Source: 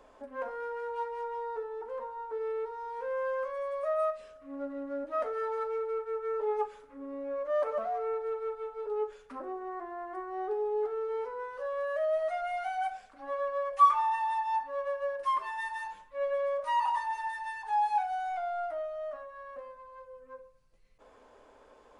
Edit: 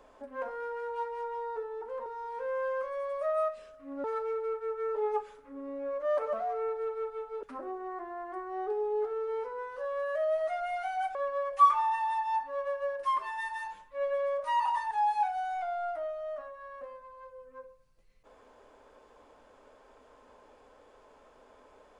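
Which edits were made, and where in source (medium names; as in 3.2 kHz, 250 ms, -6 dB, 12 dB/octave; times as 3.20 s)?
2.06–2.68 s: delete
4.66–5.49 s: delete
8.88–9.24 s: delete
12.96–13.35 s: delete
17.11–17.66 s: delete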